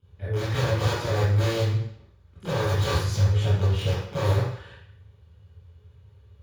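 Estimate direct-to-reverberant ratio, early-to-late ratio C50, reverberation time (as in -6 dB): -15.0 dB, -1.5 dB, 0.70 s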